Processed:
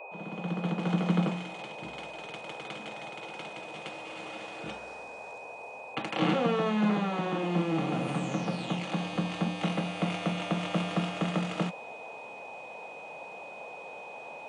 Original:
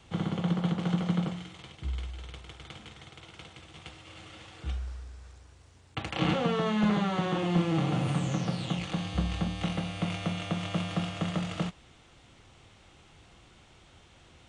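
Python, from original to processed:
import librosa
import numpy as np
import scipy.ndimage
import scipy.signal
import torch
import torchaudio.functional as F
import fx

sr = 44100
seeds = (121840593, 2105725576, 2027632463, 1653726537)

y = fx.fade_in_head(x, sr, length_s=1.24)
y = fx.rider(y, sr, range_db=4, speed_s=2.0)
y = fx.dmg_noise_band(y, sr, seeds[0], low_hz=440.0, high_hz=950.0, level_db=-48.0)
y = scipy.signal.sosfilt(scipy.signal.butter(4, 180.0, 'highpass', fs=sr, output='sos'), y)
y = y + 10.0 ** (-45.0 / 20.0) * np.sin(2.0 * np.pi * 2500.0 * np.arange(len(y)) / sr)
y = fx.peak_eq(y, sr, hz=5700.0, db=-5.0, octaves=2.9)
y = F.gain(torch.from_numpy(y), 3.0).numpy()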